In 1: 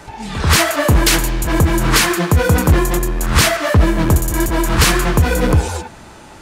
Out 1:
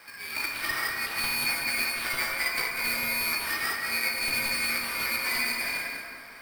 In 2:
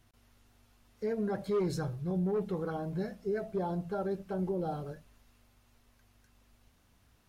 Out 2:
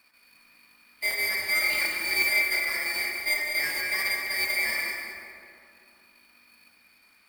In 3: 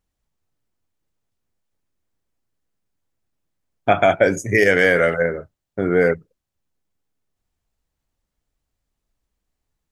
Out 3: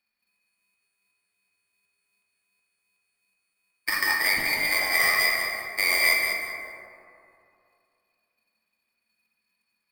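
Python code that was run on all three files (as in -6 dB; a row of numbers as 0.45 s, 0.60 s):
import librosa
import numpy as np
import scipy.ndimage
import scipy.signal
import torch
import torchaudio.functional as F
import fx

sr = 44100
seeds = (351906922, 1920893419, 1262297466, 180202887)

p1 = fx.band_shuffle(x, sr, order='2341')
p2 = scipy.signal.sosfilt(scipy.signal.butter(2, 140.0, 'highpass', fs=sr, output='sos'), p1)
p3 = fx.high_shelf(p2, sr, hz=5600.0, db=-11.0)
p4 = fx.over_compress(p3, sr, threshold_db=-20.0, ratio=-0.5)
p5 = fx.filter_lfo_highpass(p4, sr, shape='saw_up', hz=2.7, low_hz=870.0, high_hz=3900.0, q=1.3)
p6 = fx.sample_hold(p5, sr, seeds[0], rate_hz=6900.0, jitter_pct=0)
p7 = p6 + fx.echo_feedback(p6, sr, ms=194, feedback_pct=26, wet_db=-7.0, dry=0)
p8 = fx.rev_plate(p7, sr, seeds[1], rt60_s=2.6, hf_ratio=0.35, predelay_ms=0, drr_db=0.5)
y = p8 * 10.0 ** (-30 / 20.0) / np.sqrt(np.mean(np.square(p8)))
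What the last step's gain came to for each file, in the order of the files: -11.5 dB, +6.5 dB, -3.5 dB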